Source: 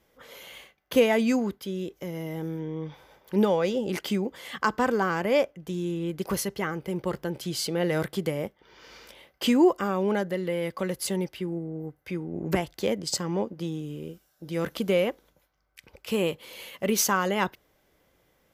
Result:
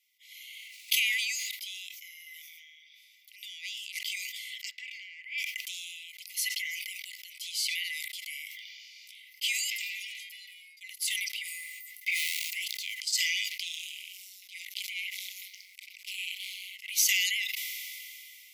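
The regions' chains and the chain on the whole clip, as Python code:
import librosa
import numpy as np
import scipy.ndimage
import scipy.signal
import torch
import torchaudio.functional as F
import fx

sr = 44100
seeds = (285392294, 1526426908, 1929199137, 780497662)

y = fx.low_shelf(x, sr, hz=200.0, db=-8.5, at=(0.54, 1.47), fade=0.02)
y = fx.dmg_noise_colour(y, sr, seeds[0], colour='brown', level_db=-44.0, at=(0.54, 1.47), fade=0.02)
y = fx.pre_swell(y, sr, db_per_s=100.0, at=(0.54, 1.47), fade=0.02)
y = fx.chain(y, sr, fx.highpass(hz=170.0, slope=12),
    fx.auto_wah(base_hz=440.0, top_hz=2400.0, q=3.2, full_db=-21.0, direction='up'), at=(4.71, 5.38))
y = fx.chain(y, sr, fx.stiff_resonator(f0_hz=78.0, decay_s=0.72, stiffness=0.008),
    fx.tube_stage(drive_db=41.0, bias=0.75), at=(9.7, 10.81))
y = fx.chain(y, sr, fx.law_mismatch(coded='mu'),
    fx.low_shelf(hz=430.0, db=10.5),
    fx.band_squash(depth_pct=70), at=(12.01, 12.97))
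y = fx.chain(y, sr, fx.high_shelf(hz=11000.0, db=-7.0),
    fx.leveller(passes=1),
    fx.ring_mod(carrier_hz=94.0), at=(13.49, 16.92))
y = scipy.signal.sosfilt(scipy.signal.cheby1(10, 1.0, 2000.0, 'highpass', fs=sr, output='sos'), y)
y = fx.sustainer(y, sr, db_per_s=21.0)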